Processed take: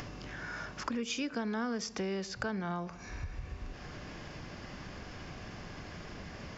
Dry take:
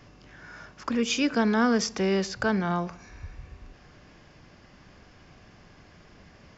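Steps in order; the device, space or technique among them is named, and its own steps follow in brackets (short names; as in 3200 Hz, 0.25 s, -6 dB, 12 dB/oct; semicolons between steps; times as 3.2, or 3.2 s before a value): upward and downward compression (upward compressor, threshold -44 dBFS; compressor 4:1, threshold -41 dBFS, peak gain reduction 18 dB); gain +5 dB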